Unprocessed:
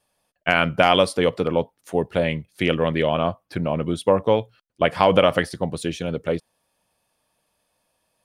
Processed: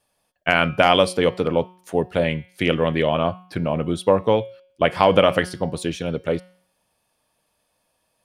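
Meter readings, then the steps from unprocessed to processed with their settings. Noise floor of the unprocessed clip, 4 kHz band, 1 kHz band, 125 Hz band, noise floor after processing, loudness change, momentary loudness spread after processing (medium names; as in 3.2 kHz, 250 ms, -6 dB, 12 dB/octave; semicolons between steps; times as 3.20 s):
-75 dBFS, +1.0 dB, +1.0 dB, +1.0 dB, -71 dBFS, +1.0 dB, 11 LU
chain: de-hum 182.2 Hz, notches 32; trim +1 dB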